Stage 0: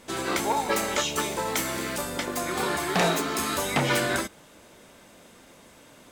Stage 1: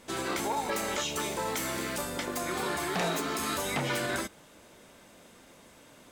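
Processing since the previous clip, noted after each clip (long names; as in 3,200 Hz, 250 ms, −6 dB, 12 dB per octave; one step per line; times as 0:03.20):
brickwall limiter −19 dBFS, peak gain reduction 4.5 dB
level −3 dB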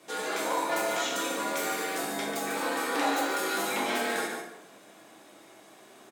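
frequency shifter +110 Hz
single-tap delay 144 ms −7 dB
dense smooth reverb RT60 0.92 s, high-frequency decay 0.6×, DRR −2 dB
level −3 dB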